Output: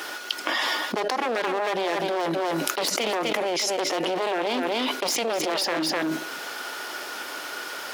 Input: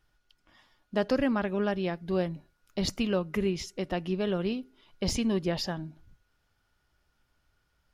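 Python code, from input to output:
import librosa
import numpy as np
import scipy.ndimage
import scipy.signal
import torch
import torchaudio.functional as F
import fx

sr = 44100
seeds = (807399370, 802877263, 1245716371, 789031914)

p1 = np.minimum(x, 2.0 * 10.0 ** (-31.5 / 20.0) - x)
p2 = scipy.signal.sosfilt(scipy.signal.butter(4, 330.0, 'highpass', fs=sr, output='sos'), p1)
p3 = p2 + fx.echo_single(p2, sr, ms=252, db=-13.5, dry=0)
p4 = fx.env_flatten(p3, sr, amount_pct=100)
y = p4 * librosa.db_to_amplitude(2.5)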